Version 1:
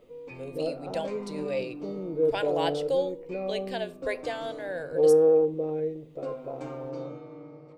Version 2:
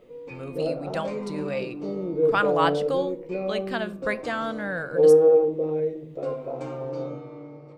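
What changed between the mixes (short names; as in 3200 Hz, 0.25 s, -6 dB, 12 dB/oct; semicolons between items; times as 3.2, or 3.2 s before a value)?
speech: remove fixed phaser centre 510 Hz, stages 4; background: send +11.0 dB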